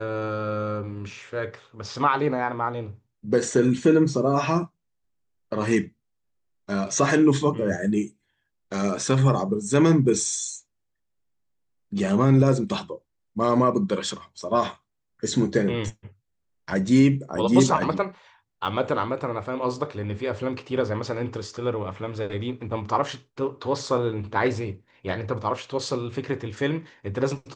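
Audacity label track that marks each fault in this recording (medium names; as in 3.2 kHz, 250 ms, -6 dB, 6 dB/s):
18.650000	18.650000	dropout 2.8 ms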